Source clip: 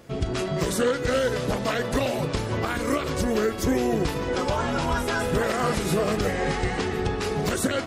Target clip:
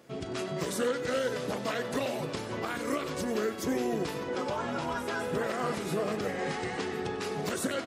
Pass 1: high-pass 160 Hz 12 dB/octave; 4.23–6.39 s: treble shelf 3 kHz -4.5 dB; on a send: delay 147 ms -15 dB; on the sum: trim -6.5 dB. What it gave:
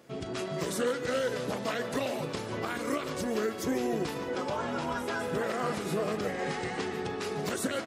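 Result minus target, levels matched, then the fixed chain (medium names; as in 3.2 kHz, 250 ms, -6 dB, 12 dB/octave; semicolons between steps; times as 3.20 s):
echo 52 ms late
high-pass 160 Hz 12 dB/octave; 4.23–6.39 s: treble shelf 3 kHz -4.5 dB; on a send: delay 95 ms -15 dB; on the sum: trim -6.5 dB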